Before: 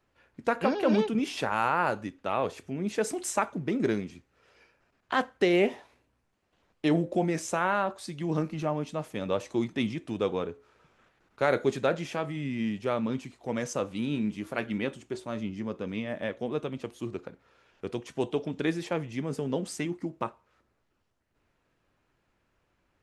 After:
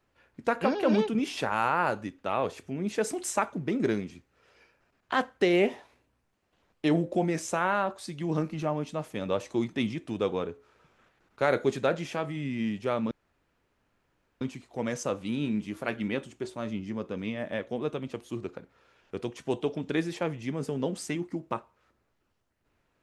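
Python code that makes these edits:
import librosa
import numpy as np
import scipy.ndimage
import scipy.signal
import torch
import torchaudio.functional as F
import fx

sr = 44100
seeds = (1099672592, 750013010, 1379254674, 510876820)

y = fx.edit(x, sr, fx.insert_room_tone(at_s=13.11, length_s=1.3), tone=tone)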